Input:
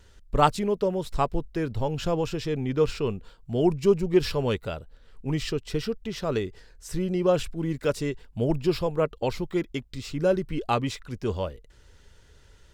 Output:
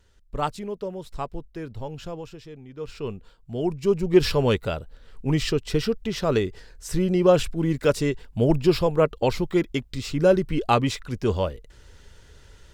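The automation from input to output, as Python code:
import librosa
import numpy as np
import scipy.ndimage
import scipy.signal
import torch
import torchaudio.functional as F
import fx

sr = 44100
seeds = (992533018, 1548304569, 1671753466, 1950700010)

y = fx.gain(x, sr, db=fx.line((1.93, -6.5), (2.71, -16.0), (3.05, -3.5), (3.76, -3.5), (4.22, 5.0)))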